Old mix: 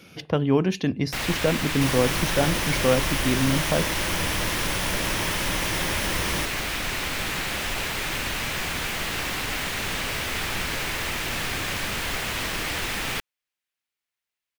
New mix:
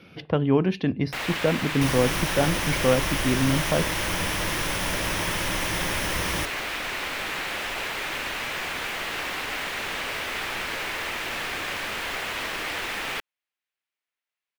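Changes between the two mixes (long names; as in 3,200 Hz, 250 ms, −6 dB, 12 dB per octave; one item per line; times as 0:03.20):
speech: add moving average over 6 samples
first sound: add bass and treble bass −12 dB, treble −7 dB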